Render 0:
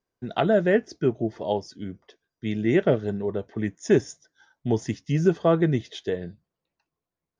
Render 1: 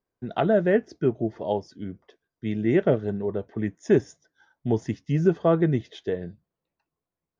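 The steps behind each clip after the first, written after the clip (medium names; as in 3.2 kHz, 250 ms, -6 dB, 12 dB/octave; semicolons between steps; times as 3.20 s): treble shelf 3.2 kHz -10.5 dB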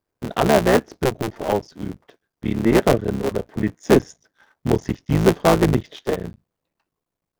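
cycle switcher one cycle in 3, muted; trim +6.5 dB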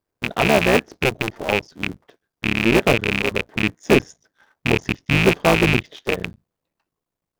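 rattle on loud lows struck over -25 dBFS, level -6 dBFS; trim -1 dB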